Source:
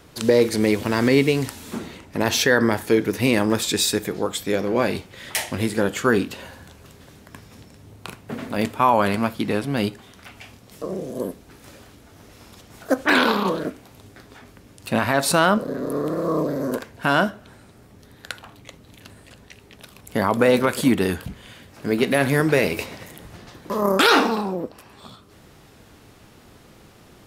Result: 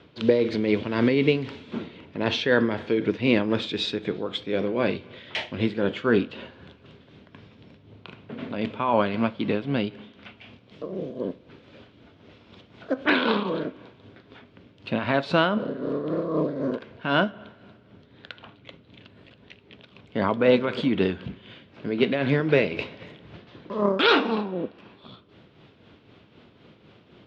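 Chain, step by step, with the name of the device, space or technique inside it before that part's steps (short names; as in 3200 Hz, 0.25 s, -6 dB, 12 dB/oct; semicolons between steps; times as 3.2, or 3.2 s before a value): combo amplifier with spring reverb and tremolo (spring tank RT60 1.8 s, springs 33/53 ms, chirp 70 ms, DRR 19.5 dB; tremolo 3.9 Hz, depth 52%; speaker cabinet 100–3600 Hz, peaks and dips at 800 Hz -6 dB, 1200 Hz -4 dB, 1800 Hz -5 dB, 3300 Hz +3 dB)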